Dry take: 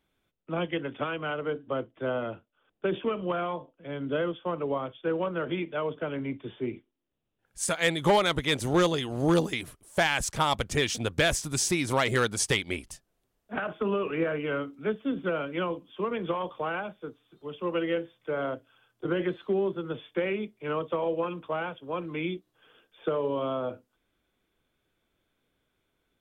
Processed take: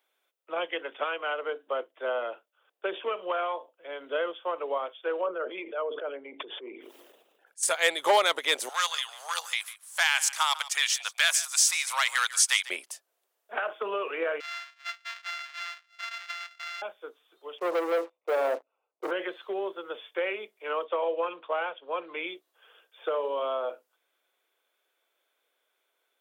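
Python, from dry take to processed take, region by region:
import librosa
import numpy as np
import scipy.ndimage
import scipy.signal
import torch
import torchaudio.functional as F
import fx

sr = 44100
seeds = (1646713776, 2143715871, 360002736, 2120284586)

y = fx.chain(x, sr, fx.envelope_sharpen(power=1.5),
    fx.transient(attack_db=-6, sustain_db=2),
    fx.sustainer(db_per_s=41.0), at=(5.21, 7.63))
y = fx.chain(y, sr, fx.highpass(hz=1000.0, slope=24),
    fx.peak_eq(hz=6400.0, db=3.0, octaves=1.7),
    fx.echo_single(ms=148, db=-16.5), at=(8.69, 12.7))
y = fx.chain(y, sr, fx.sample_sort(block=64),
    fx.highpass(hz=1500.0, slope=24),
    fx.air_absorb(metres=180.0), at=(14.4, 16.82))
y = fx.chain(y, sr, fx.moving_average(points=27),
    fx.leveller(passes=3), at=(17.58, 19.11))
y = fx.chain(y, sr, fx.brickwall_lowpass(high_hz=4700.0),
    fx.low_shelf(hz=200.0, db=4.5), at=(20.84, 22.27))
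y = scipy.signal.sosfilt(scipy.signal.butter(4, 480.0, 'highpass', fs=sr, output='sos'), y)
y = fx.high_shelf(y, sr, hz=11000.0, db=6.5)
y = y * 10.0 ** (2.0 / 20.0)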